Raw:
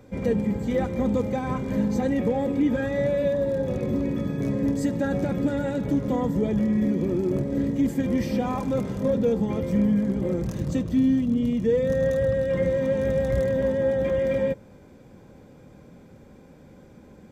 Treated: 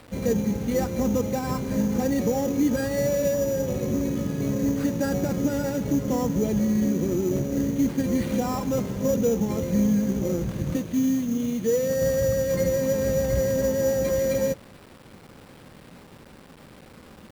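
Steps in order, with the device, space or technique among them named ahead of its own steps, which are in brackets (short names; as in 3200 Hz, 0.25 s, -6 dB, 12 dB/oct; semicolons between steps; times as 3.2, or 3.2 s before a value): early 8-bit sampler (sample-rate reducer 6400 Hz, jitter 0%; bit-crush 8-bit); 10.76–12.02 HPF 220 Hz 6 dB/oct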